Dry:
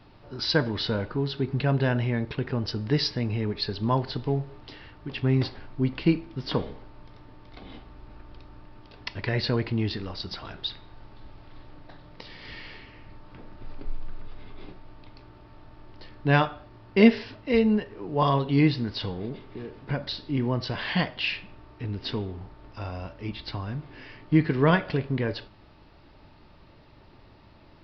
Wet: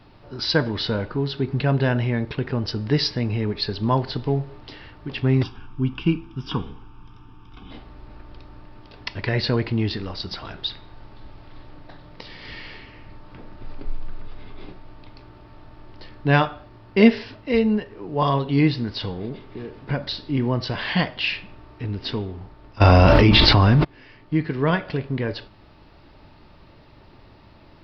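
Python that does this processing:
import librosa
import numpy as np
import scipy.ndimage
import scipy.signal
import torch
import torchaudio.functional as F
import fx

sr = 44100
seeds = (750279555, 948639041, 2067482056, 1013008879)

y = fx.fixed_phaser(x, sr, hz=2900.0, stages=8, at=(5.43, 7.71))
y = fx.env_flatten(y, sr, amount_pct=100, at=(22.8, 23.83), fade=0.02)
y = fx.rider(y, sr, range_db=4, speed_s=2.0)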